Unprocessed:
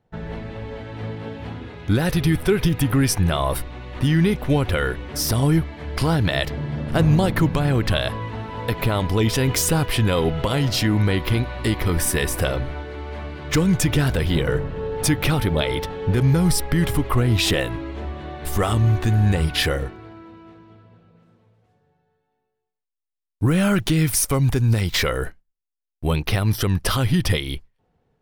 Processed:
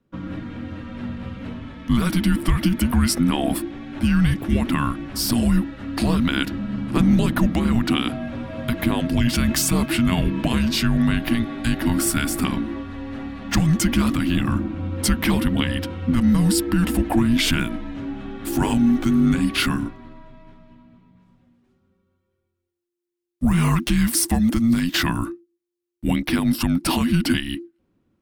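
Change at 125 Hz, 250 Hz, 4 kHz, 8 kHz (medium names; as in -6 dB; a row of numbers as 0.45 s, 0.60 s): -4.0 dB, +4.0 dB, -0.5 dB, -0.5 dB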